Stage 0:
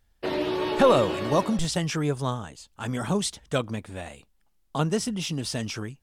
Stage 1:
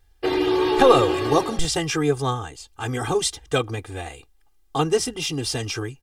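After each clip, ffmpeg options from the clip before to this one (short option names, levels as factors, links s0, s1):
-af "aecho=1:1:2.5:1,volume=1.33"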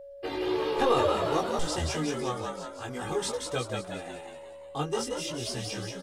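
-filter_complex "[0:a]flanger=delay=16.5:depth=4.5:speed=0.54,asplit=8[s0][s1][s2][s3][s4][s5][s6][s7];[s1]adelay=179,afreqshift=77,volume=0.631[s8];[s2]adelay=358,afreqshift=154,volume=0.324[s9];[s3]adelay=537,afreqshift=231,volume=0.164[s10];[s4]adelay=716,afreqshift=308,volume=0.0841[s11];[s5]adelay=895,afreqshift=385,volume=0.0427[s12];[s6]adelay=1074,afreqshift=462,volume=0.0219[s13];[s7]adelay=1253,afreqshift=539,volume=0.0111[s14];[s0][s8][s9][s10][s11][s12][s13][s14]amix=inputs=8:normalize=0,aeval=exprs='val(0)+0.0158*sin(2*PI*560*n/s)':c=same,volume=0.447"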